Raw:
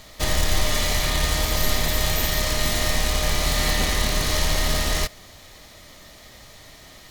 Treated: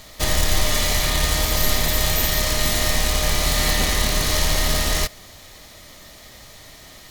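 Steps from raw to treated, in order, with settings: treble shelf 6.9 kHz +4 dB; trim +1.5 dB

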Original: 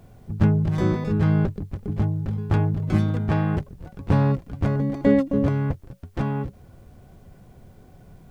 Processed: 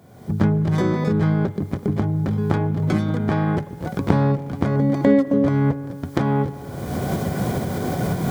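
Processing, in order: recorder AGC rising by 38 dB/s; high-pass 140 Hz 12 dB/octave; band-stop 2.7 kHz, Q 7.9; on a send: reverberation RT60 2.3 s, pre-delay 50 ms, DRR 15.5 dB; on the sum: trim +2 dB

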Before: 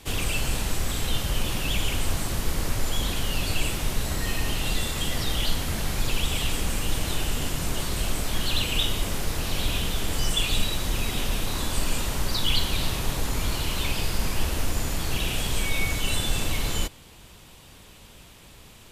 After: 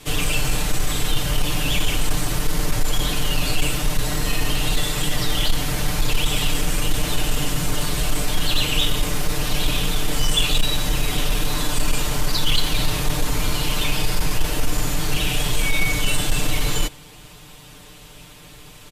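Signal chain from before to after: comb 6.7 ms, depth 99%; sine folder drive 4 dB, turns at -5 dBFS; trim -5 dB

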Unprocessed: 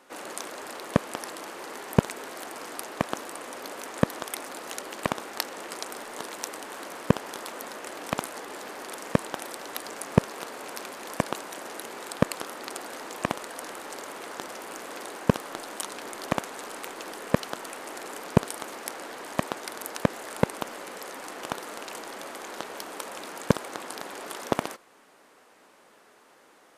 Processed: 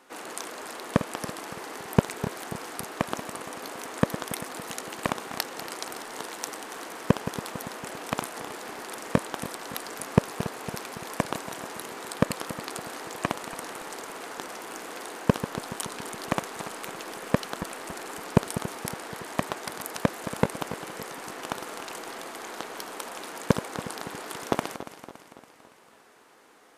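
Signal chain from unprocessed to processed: backward echo that repeats 141 ms, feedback 72%, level -12 dB; band-stop 570 Hz, Q 12

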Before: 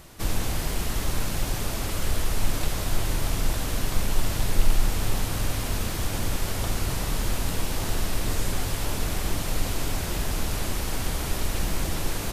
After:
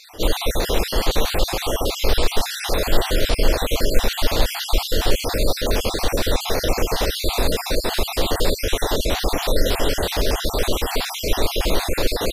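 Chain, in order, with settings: random holes in the spectrogram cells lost 47%; graphic EQ 125/500/4000/8000 Hz -10/+11/+8/-5 dB; trim +8 dB

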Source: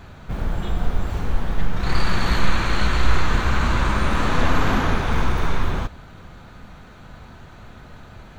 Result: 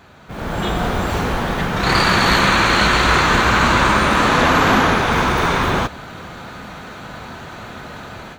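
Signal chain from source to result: high-pass 260 Hz 6 dB/octave; level rider gain up to 13.5 dB

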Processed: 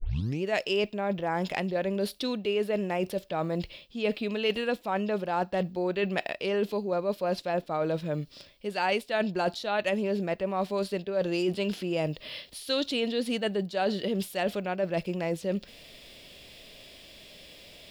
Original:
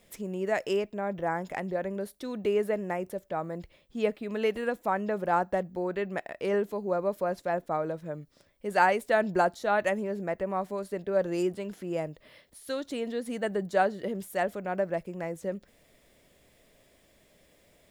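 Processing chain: tape start-up on the opening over 0.43 s; harmonic-percussive split harmonic +4 dB; reverse; compression 6:1, threshold -32 dBFS, peak gain reduction 15.5 dB; reverse; high-order bell 3.6 kHz +12 dB 1.3 oct; trim +6 dB

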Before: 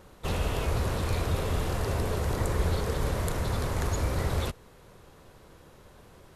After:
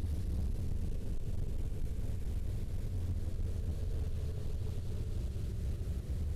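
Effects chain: amplifier tone stack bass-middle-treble 10-0-1; Paulstretch 32×, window 0.10 s, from 2.00 s; volume shaper 125 bpm, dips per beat 2, -5 dB, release 166 ms; hard clipper -35.5 dBFS, distortion -13 dB; loudspeaker Doppler distortion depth 0.46 ms; trim +5 dB

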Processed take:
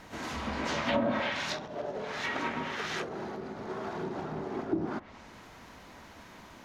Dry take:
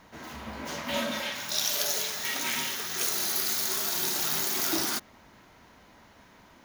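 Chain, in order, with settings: harmony voices -12 st -15 dB, +3 st -8 dB; low-pass that closes with the level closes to 320 Hz, closed at -22.5 dBFS; trim +4 dB

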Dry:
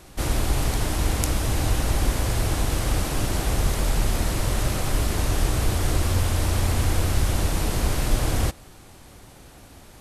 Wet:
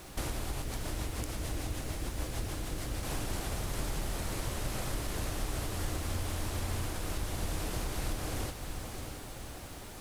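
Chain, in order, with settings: bass shelf 200 Hz -3 dB; compression 10:1, threshold -32 dBFS, peak gain reduction 16 dB; 0.62–3.03 s: rotary cabinet horn 6.7 Hz; added noise violet -66 dBFS; echo that smears into a reverb 631 ms, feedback 48%, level -6 dB

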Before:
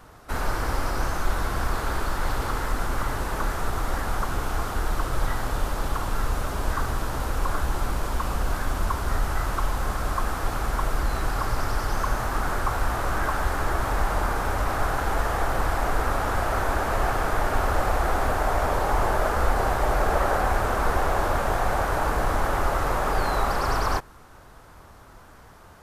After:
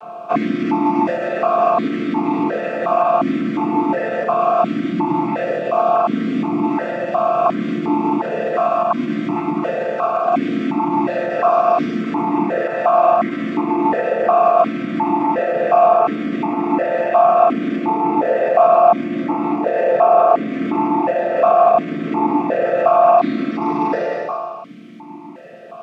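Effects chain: vocoder on a held chord minor triad, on D3; reverb removal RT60 1.4 s; 9.78–10.41 s: compressor with a negative ratio -37 dBFS, ratio -0.5; bit crusher 11-bit; Schroeder reverb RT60 1.5 s, combs from 33 ms, DRR -2 dB; loudness maximiser +23 dB; stepped vowel filter 2.8 Hz; trim +3.5 dB

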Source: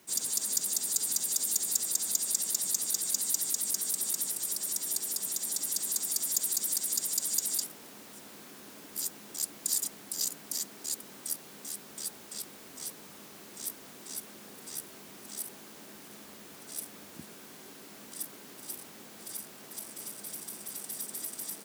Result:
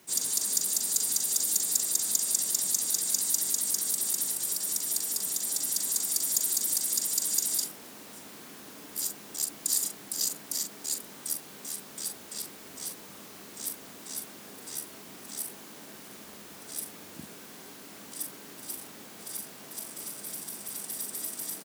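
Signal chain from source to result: doubling 41 ms -7.5 dB; trim +2 dB

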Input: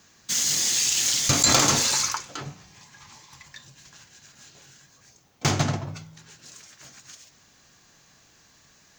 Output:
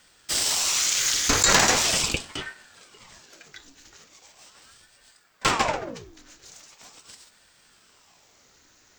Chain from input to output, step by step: dynamic bell 1.6 kHz, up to +8 dB, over -45 dBFS, Q 1.5; ring modulator with a swept carrier 910 Hz, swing 85%, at 0.4 Hz; trim +2 dB

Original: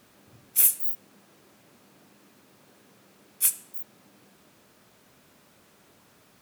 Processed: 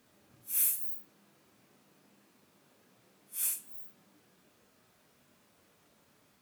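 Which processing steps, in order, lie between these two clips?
phase randomisation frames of 200 ms; trim -8 dB

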